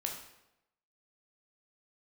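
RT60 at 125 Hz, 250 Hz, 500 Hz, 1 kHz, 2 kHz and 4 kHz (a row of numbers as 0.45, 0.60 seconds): 0.90, 0.90, 0.95, 0.85, 0.80, 0.70 seconds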